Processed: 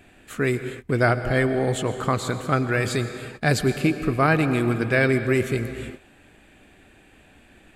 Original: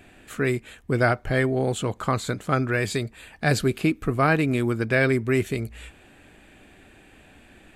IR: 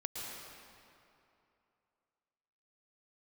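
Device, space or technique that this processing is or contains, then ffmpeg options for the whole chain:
keyed gated reverb: -filter_complex "[0:a]asplit=3[s0][s1][s2];[1:a]atrim=start_sample=2205[s3];[s1][s3]afir=irnorm=-1:irlink=0[s4];[s2]apad=whole_len=341860[s5];[s4][s5]sidechaingate=range=0.0224:threshold=0.00447:ratio=16:detection=peak,volume=0.473[s6];[s0][s6]amix=inputs=2:normalize=0,volume=0.841"

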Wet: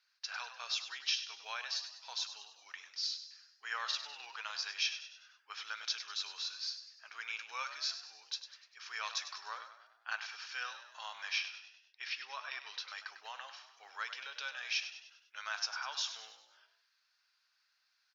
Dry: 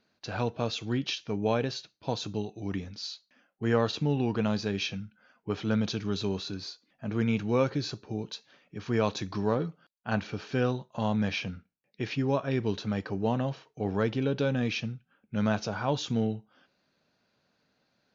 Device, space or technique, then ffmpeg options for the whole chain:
headphones lying on a table: -filter_complex "[0:a]asettb=1/sr,asplit=3[s0][s1][s2];[s0]atrim=end=11.384[s3];[s1]atrim=start=11.38:end=12.88,asetpts=PTS-STARTPTS,afade=t=in:d=0.004:c=qsin,afade=t=out:st=1.496:d=0.004:c=qsin,lowpass=f=5800:w=0.5412,lowpass=f=5800:w=1.3066[s4];[s2]atrim=start=12.876[s5];[s3][s4]acrossfade=d=0.004:c1=hsin:c2=qsin[s6];[s6][s5]acrossfade=d=0.004:c1=qsin:c2=hsin,asplit=6[s7][s8][s9][s10][s11][s12];[s8]adelay=99,afreqshift=48,volume=0.282[s13];[s9]adelay=198,afreqshift=96,volume=0.138[s14];[s10]adelay=297,afreqshift=144,volume=0.0676[s15];[s11]adelay=396,afreqshift=192,volume=0.0331[s16];[s12]adelay=495,afreqshift=240,volume=0.0162[s17];[s7][s13][s14][s15][s16][s17]amix=inputs=6:normalize=0,highpass=f=1200:w=0.5412,highpass=f=1200:w=1.3066,equalizer=f=5300:t=o:w=0.26:g=9,volume=0.794"

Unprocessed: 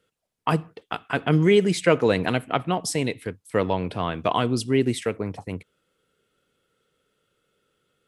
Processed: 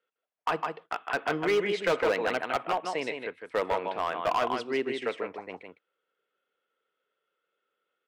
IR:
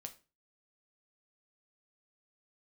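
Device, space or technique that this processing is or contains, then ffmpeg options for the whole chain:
walkie-talkie: -af "highpass=560,lowpass=2500,aecho=1:1:157:0.501,asoftclip=type=hard:threshold=0.0944,agate=range=0.447:threshold=0.00355:ratio=16:detection=peak"

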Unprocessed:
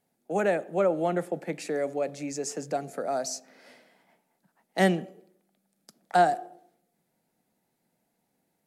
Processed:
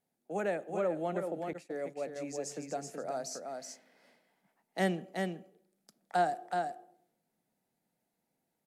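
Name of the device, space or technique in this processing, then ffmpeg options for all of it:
ducked delay: -filter_complex "[0:a]asplit=3[s0][s1][s2];[s1]adelay=375,volume=0.596[s3];[s2]apad=whole_len=398857[s4];[s3][s4]sidechaincompress=threshold=0.0447:ratio=8:attack=8.1:release=147[s5];[s0][s5]amix=inputs=2:normalize=0,asettb=1/sr,asplit=3[s6][s7][s8];[s6]atrim=end=1.534[s9];[s7]atrim=start=1.53:end=2.16,asetpts=PTS-STARTPTS,afade=t=in:d=0.004:c=qsin,afade=t=out:st=0.626:d=0.004:c=qsin,agate=range=0.0224:threshold=0.0501:ratio=3:detection=peak[s10];[s8]atrim=start=2.156[s11];[s9][s10]acrossfade=d=0.004:c1=hsin:c2=qsin[s12];[s12][s11]acrossfade=d=0.004:c1=qsin:c2=hsin,volume=0.398"

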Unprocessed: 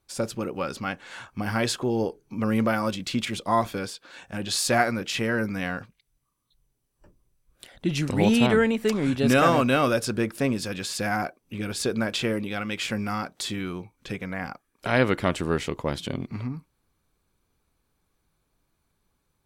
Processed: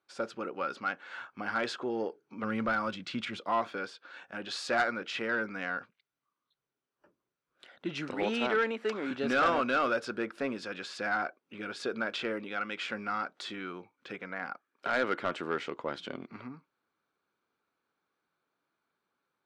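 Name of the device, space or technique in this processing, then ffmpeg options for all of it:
intercom: -filter_complex "[0:a]asettb=1/sr,asplit=3[s0][s1][s2];[s0]atrim=end=8.144[s3];[s1]atrim=start=8.14:end=9.11,asetpts=PTS-STARTPTS,afade=t=in:d=0.004:c=qsin,afade=t=out:st=0.966:d=0.004:c=qsin,highpass=230[s4];[s2]atrim=start=9.106[s5];[s3][s4]acrossfade=d=0.004:c1=hsin:c2=qsin[s6];[s6][s5]acrossfade=d=0.004:c1=qsin:c2=hsin,highpass=300,lowpass=3800,equalizer=f=1400:t=o:w=0.36:g=8,asoftclip=type=tanh:threshold=0.2,asplit=3[s7][s8][s9];[s7]afade=t=out:st=2.42:d=0.02[s10];[s8]asubboost=boost=4.5:cutoff=180,afade=t=in:st=2.42:d=0.02,afade=t=out:st=3.36:d=0.02[s11];[s9]afade=t=in:st=3.36:d=0.02[s12];[s10][s11][s12]amix=inputs=3:normalize=0,volume=0.531"

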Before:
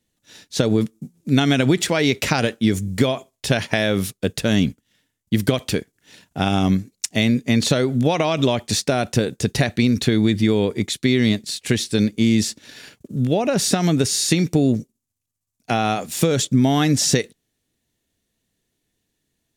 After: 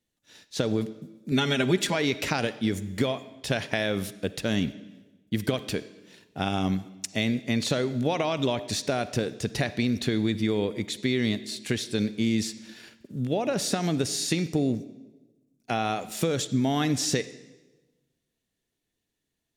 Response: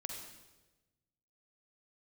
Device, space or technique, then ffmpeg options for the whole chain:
filtered reverb send: -filter_complex "[0:a]asplit=2[s0][s1];[s1]highpass=220,lowpass=6000[s2];[1:a]atrim=start_sample=2205[s3];[s2][s3]afir=irnorm=-1:irlink=0,volume=0.447[s4];[s0][s4]amix=inputs=2:normalize=0,asettb=1/sr,asplit=3[s5][s6][s7];[s5]atrim=end=1.314[s8];[s6]atrim=start=1.31:end=1.95,asetpts=PTS-STARTPTS,afade=t=in:d=0.004:c=qsin,afade=t=out:st=0.636:d=0.004:c=qsin,aecho=1:1:5:0.86,atrim=end_sample=28224[s9];[s7]atrim=start=1.946[s10];[s8][s9]acrossfade=d=0.004:c1=hsin:c2=qsin[s11];[s11][s10]acrossfade=d=0.004:c1=qsin:c2=hsin,volume=0.355"

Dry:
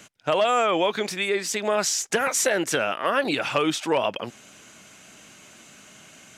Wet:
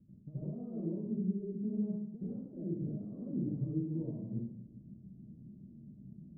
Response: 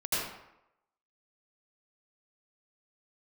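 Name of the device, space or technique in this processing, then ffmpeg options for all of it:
club heard from the street: -filter_complex "[0:a]alimiter=limit=0.112:level=0:latency=1:release=296,lowpass=f=220:w=0.5412,lowpass=f=220:w=1.3066[s0];[1:a]atrim=start_sample=2205[s1];[s0][s1]afir=irnorm=-1:irlink=0"

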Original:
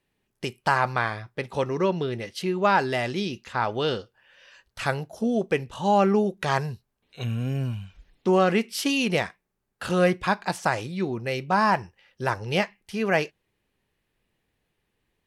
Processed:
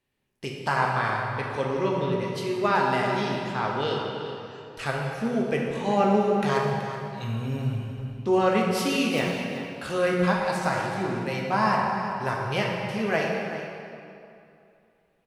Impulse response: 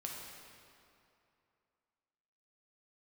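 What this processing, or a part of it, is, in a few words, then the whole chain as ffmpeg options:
cave: -filter_complex "[0:a]asettb=1/sr,asplit=3[s0][s1][s2];[s0]atrim=end=9.144[s3];[s1]atrim=start=9.14:end=10.05,asetpts=PTS-STARTPTS,afade=t=in:d=0.004:c=qsin,afade=t=out:st=0.906:d=0.004:c=qsin,deesser=0.6[s4];[s2]atrim=start=10.046[s5];[s3][s4]acrossfade=d=0.004:c1=hsin:c2=qsin[s6];[s6][s5]acrossfade=d=0.004:c1=qsin:c2=hsin,aecho=1:1:378:0.224[s7];[1:a]atrim=start_sample=2205[s8];[s7][s8]afir=irnorm=-1:irlink=0"

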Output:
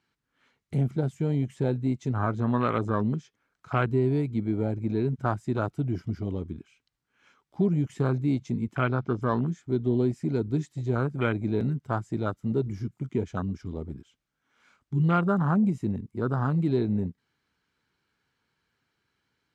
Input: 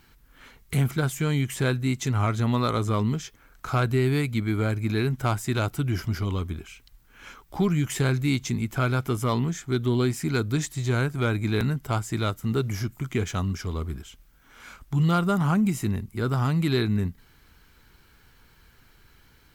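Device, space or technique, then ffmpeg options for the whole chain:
over-cleaned archive recording: -filter_complex "[0:a]highpass=130,lowpass=6900,afwtdn=0.0355,asplit=3[s0][s1][s2];[s0]afade=t=out:st=8.81:d=0.02[s3];[s1]lowpass=f=5500:w=0.5412,lowpass=f=5500:w=1.3066,afade=t=in:st=8.81:d=0.02,afade=t=out:st=9.21:d=0.02[s4];[s2]afade=t=in:st=9.21:d=0.02[s5];[s3][s4][s5]amix=inputs=3:normalize=0"

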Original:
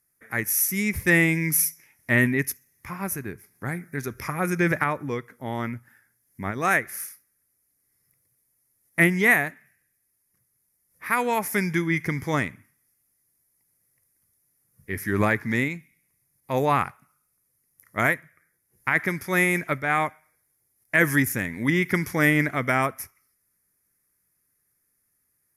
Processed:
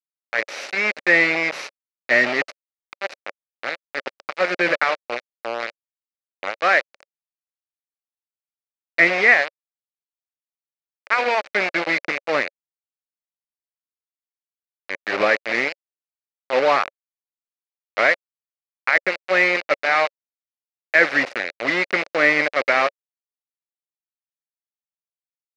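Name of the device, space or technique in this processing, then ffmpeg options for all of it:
hand-held game console: -af "acrusher=bits=3:mix=0:aa=0.000001,highpass=500,equalizer=f=560:t=q:w=4:g=8,equalizer=f=970:t=q:w=4:g=-5,equalizer=f=2300:t=q:w=4:g=3,equalizer=f=3300:t=q:w=4:g=-8,lowpass=f=4100:w=0.5412,lowpass=f=4100:w=1.3066,volume=1.68"

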